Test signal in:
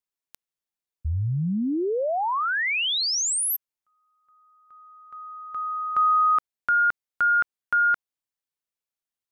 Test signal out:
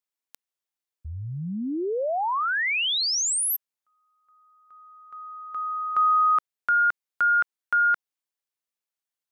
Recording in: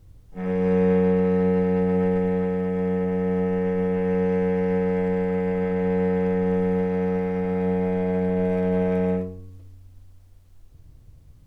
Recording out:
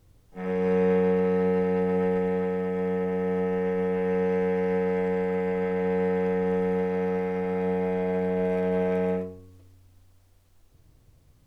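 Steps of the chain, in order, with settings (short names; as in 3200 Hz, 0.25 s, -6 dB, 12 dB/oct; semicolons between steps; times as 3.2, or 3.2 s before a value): low shelf 190 Hz -11 dB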